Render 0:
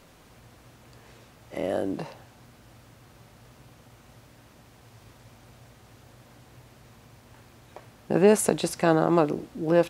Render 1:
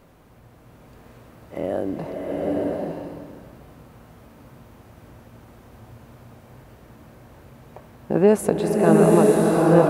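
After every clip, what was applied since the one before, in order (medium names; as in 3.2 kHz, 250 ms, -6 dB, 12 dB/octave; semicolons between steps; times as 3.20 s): peaking EQ 5.5 kHz -11.5 dB 2.9 oct; swelling reverb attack 910 ms, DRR -3 dB; trim +3 dB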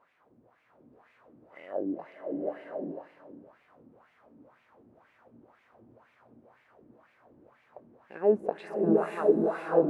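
wah-wah 2 Hz 260–2300 Hz, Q 3; trim -2 dB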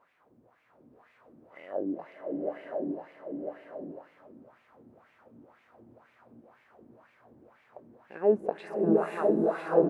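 delay 1000 ms -4.5 dB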